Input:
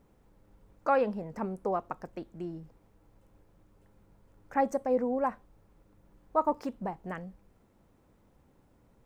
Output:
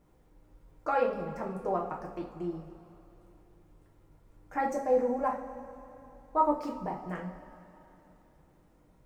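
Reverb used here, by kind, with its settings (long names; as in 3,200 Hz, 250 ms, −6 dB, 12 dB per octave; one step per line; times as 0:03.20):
coupled-rooms reverb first 0.38 s, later 3.2 s, from −17 dB, DRR −1.5 dB
level −3.5 dB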